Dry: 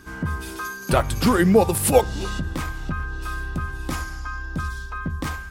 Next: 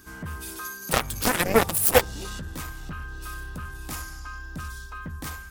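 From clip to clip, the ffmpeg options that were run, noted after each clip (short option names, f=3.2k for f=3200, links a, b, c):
-af "aeval=exprs='0.75*(cos(1*acos(clip(val(0)/0.75,-1,1)))-cos(1*PI/2))+0.188*(cos(7*acos(clip(val(0)/0.75,-1,1)))-cos(7*PI/2))':c=same,aemphasis=mode=production:type=50kf,volume=-4dB"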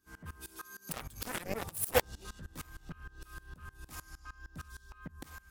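-af "aeval=exprs='val(0)*pow(10,-23*if(lt(mod(-6.5*n/s,1),2*abs(-6.5)/1000),1-mod(-6.5*n/s,1)/(2*abs(-6.5)/1000),(mod(-6.5*n/s,1)-2*abs(-6.5)/1000)/(1-2*abs(-6.5)/1000))/20)':c=same,volume=-5.5dB"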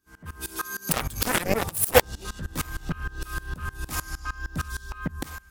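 -af "dynaudnorm=f=110:g=7:m=16dB"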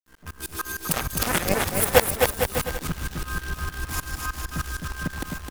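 -filter_complex "[0:a]acrusher=bits=7:dc=4:mix=0:aa=0.000001,asplit=2[a][b];[b]aecho=0:1:260|455|601.2|710.9|793.2:0.631|0.398|0.251|0.158|0.1[c];[a][c]amix=inputs=2:normalize=0"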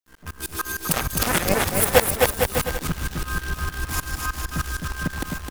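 -af "asoftclip=type=tanh:threshold=-7dB,volume=3dB"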